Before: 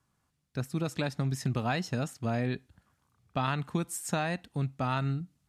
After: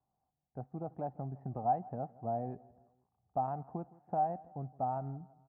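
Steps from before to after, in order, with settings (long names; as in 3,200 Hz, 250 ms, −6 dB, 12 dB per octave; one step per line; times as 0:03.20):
transistor ladder low-pass 800 Hz, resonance 80%
repeating echo 164 ms, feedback 48%, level −22 dB
level +1 dB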